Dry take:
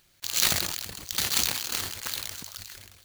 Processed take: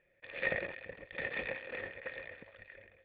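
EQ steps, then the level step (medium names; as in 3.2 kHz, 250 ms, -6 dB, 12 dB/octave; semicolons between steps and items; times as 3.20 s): cascade formant filter e; peaking EQ 82 Hz -7 dB 0.42 oct; +9.5 dB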